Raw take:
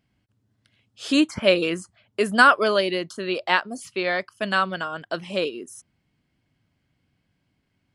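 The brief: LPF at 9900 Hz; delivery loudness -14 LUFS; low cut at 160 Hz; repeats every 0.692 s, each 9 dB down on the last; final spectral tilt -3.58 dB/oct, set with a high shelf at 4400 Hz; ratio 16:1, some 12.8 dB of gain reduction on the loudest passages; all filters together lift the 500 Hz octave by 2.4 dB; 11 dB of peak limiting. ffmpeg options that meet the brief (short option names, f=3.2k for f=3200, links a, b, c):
-af "highpass=160,lowpass=9.9k,equalizer=f=500:t=o:g=3,highshelf=f=4.4k:g=4,acompressor=threshold=-21dB:ratio=16,alimiter=limit=-19.5dB:level=0:latency=1,aecho=1:1:692|1384|2076|2768:0.355|0.124|0.0435|0.0152,volume=17dB"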